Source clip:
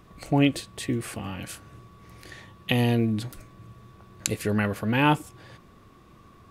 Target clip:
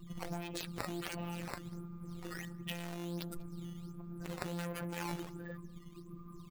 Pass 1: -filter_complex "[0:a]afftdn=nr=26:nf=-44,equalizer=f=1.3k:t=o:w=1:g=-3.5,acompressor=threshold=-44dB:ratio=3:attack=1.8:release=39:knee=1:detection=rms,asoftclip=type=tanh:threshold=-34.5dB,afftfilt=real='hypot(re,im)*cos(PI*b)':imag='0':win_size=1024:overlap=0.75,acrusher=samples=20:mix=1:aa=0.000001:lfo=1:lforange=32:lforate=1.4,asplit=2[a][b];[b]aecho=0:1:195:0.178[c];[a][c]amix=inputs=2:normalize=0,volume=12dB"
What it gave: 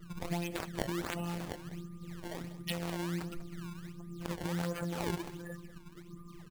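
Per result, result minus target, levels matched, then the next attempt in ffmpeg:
soft clip: distortion -12 dB; echo-to-direct +9.5 dB; decimation with a swept rate: distortion +3 dB
-filter_complex "[0:a]afftdn=nr=26:nf=-44,equalizer=f=1.3k:t=o:w=1:g=-3.5,acompressor=threshold=-44dB:ratio=3:attack=1.8:release=39:knee=1:detection=rms,asoftclip=type=tanh:threshold=-45dB,afftfilt=real='hypot(re,im)*cos(PI*b)':imag='0':win_size=1024:overlap=0.75,acrusher=samples=20:mix=1:aa=0.000001:lfo=1:lforange=32:lforate=1.4,asplit=2[a][b];[b]aecho=0:1:195:0.178[c];[a][c]amix=inputs=2:normalize=0,volume=12dB"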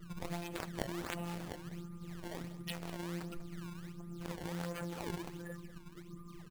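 echo-to-direct +9.5 dB; decimation with a swept rate: distortion +4 dB
-filter_complex "[0:a]afftdn=nr=26:nf=-44,equalizer=f=1.3k:t=o:w=1:g=-3.5,acompressor=threshold=-44dB:ratio=3:attack=1.8:release=39:knee=1:detection=rms,asoftclip=type=tanh:threshold=-45dB,afftfilt=real='hypot(re,im)*cos(PI*b)':imag='0':win_size=1024:overlap=0.75,acrusher=samples=20:mix=1:aa=0.000001:lfo=1:lforange=32:lforate=1.4,asplit=2[a][b];[b]aecho=0:1:195:0.0596[c];[a][c]amix=inputs=2:normalize=0,volume=12dB"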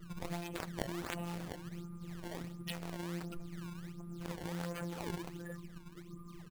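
decimation with a swept rate: distortion +4 dB
-filter_complex "[0:a]afftdn=nr=26:nf=-44,equalizer=f=1.3k:t=o:w=1:g=-3.5,acompressor=threshold=-44dB:ratio=3:attack=1.8:release=39:knee=1:detection=rms,asoftclip=type=tanh:threshold=-45dB,afftfilt=real='hypot(re,im)*cos(PI*b)':imag='0':win_size=1024:overlap=0.75,acrusher=samples=8:mix=1:aa=0.000001:lfo=1:lforange=12.8:lforate=1.4,asplit=2[a][b];[b]aecho=0:1:195:0.0596[c];[a][c]amix=inputs=2:normalize=0,volume=12dB"

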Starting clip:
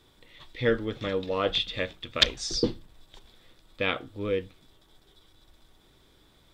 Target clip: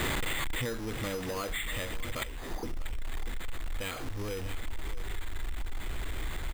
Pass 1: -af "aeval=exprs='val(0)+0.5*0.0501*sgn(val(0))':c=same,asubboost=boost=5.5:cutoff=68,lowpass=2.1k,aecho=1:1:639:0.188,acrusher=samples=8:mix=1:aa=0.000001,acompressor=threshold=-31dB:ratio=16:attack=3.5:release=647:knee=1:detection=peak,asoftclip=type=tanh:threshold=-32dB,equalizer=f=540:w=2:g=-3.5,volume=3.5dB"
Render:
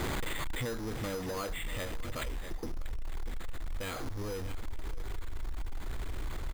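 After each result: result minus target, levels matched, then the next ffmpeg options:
soft clip: distortion +9 dB; 2000 Hz band -2.5 dB
-af "aeval=exprs='val(0)+0.5*0.0501*sgn(val(0))':c=same,asubboost=boost=5.5:cutoff=68,lowpass=2.1k,aecho=1:1:639:0.188,acrusher=samples=8:mix=1:aa=0.000001,acompressor=threshold=-31dB:ratio=16:attack=3.5:release=647:knee=1:detection=peak,asoftclip=type=tanh:threshold=-26dB,equalizer=f=540:w=2:g=-3.5,volume=3.5dB"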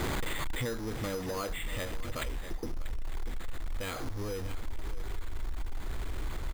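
2000 Hz band -2.5 dB
-af "aeval=exprs='val(0)+0.5*0.0501*sgn(val(0))':c=same,asubboost=boost=5.5:cutoff=68,lowpass=5.1k,aecho=1:1:639:0.188,acrusher=samples=8:mix=1:aa=0.000001,acompressor=threshold=-31dB:ratio=16:attack=3.5:release=647:knee=1:detection=peak,asoftclip=type=tanh:threshold=-26dB,equalizer=f=540:w=2:g=-3.5,volume=3.5dB"

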